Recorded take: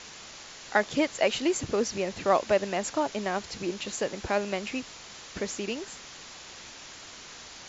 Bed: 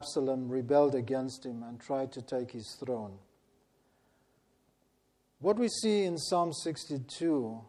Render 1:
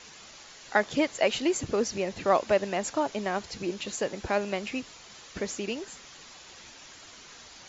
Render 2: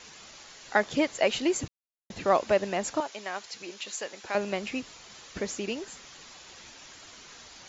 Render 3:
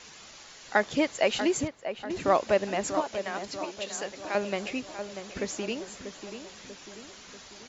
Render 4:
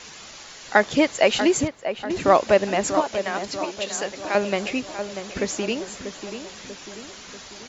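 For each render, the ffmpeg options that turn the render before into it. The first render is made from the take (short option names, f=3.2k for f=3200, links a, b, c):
-af "afftdn=nr=6:nf=-46"
-filter_complex "[0:a]asettb=1/sr,asplit=3[a][b][c];[a]atrim=end=3.004[d];[b]atrim=start=3:end=4.35,asetpts=PTS-STARTPTS,afade=t=in:d=0.004:c=qsin,afade=t=out:st=1.346:d=0.004:c=qsin,highpass=f=1.2k:p=1[e];[c]atrim=start=4.346[f];[d][e]acrossfade=d=0.004:c1=hsin:c2=qsin[g];[g][f]acrossfade=d=0.004:c1=qsin:c2=hsin,asplit=3[h][i][j];[h]atrim=end=1.68,asetpts=PTS-STARTPTS,afade=t=out:st=1.676:d=0.004:c=hsin[k];[i]atrim=start=1.68:end=2.1,asetpts=PTS-STARTPTS,volume=0[l];[j]atrim=start=2.1,asetpts=PTS-STARTPTS,afade=t=in:d=0.004:c=hsin[m];[k][l][m]concat=n=3:v=0:a=1"
-filter_complex "[0:a]asplit=2[a][b];[b]adelay=640,lowpass=f=1.8k:p=1,volume=-8.5dB,asplit=2[c][d];[d]adelay=640,lowpass=f=1.8k:p=1,volume=0.54,asplit=2[e][f];[f]adelay=640,lowpass=f=1.8k:p=1,volume=0.54,asplit=2[g][h];[h]adelay=640,lowpass=f=1.8k:p=1,volume=0.54,asplit=2[i][j];[j]adelay=640,lowpass=f=1.8k:p=1,volume=0.54,asplit=2[k][l];[l]adelay=640,lowpass=f=1.8k:p=1,volume=0.54[m];[a][c][e][g][i][k][m]amix=inputs=7:normalize=0"
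-af "volume=7dB"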